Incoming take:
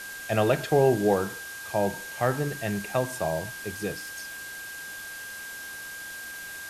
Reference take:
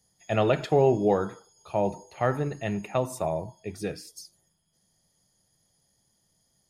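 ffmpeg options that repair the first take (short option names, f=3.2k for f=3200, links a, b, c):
-af "bandreject=f=1.6k:w=30,afftdn=nr=30:nf=-39"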